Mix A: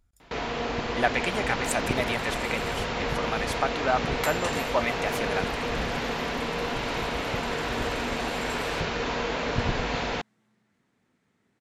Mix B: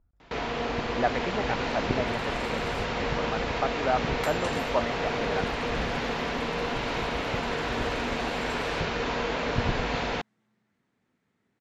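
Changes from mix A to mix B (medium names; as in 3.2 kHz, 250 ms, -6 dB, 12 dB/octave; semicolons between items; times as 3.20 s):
speech: add low-pass 1.2 kHz 12 dB/octave; second sound -3.5 dB; master: add treble shelf 9.2 kHz -9.5 dB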